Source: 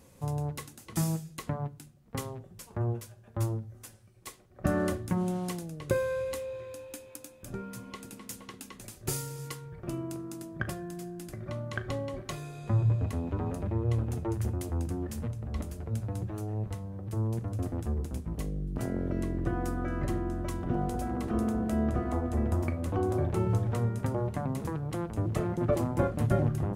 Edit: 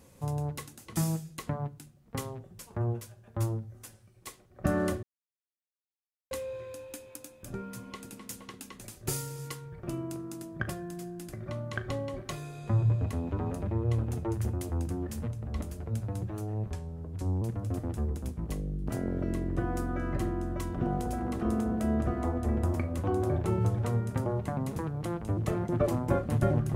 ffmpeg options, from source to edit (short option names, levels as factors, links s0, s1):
-filter_complex "[0:a]asplit=5[s0][s1][s2][s3][s4];[s0]atrim=end=5.03,asetpts=PTS-STARTPTS,afade=t=out:st=5.026:d=0.004:c=hsin[s5];[s1]atrim=start=5.03:end=6.31,asetpts=PTS-STARTPTS,volume=0[s6];[s2]atrim=start=6.31:end=16.704,asetpts=PTS-STARTPTS,afade=t=in:d=0.004:c=hsin[s7];[s3]atrim=start=16.7:end=17.3,asetpts=PTS-STARTPTS,asetrate=37044,aresample=44100[s8];[s4]atrim=start=17.296[s9];[s5][s6][s7]concat=n=3:v=0:a=1[s10];[s10][s8]acrossfade=d=0.004:c1=hsin:c2=hsin[s11];[s11][s9]acrossfade=d=0.004:c1=hsin:c2=hsin"